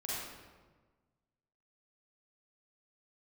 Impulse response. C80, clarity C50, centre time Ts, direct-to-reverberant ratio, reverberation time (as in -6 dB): -0.5 dB, -4.5 dB, 0.107 s, -8.0 dB, 1.4 s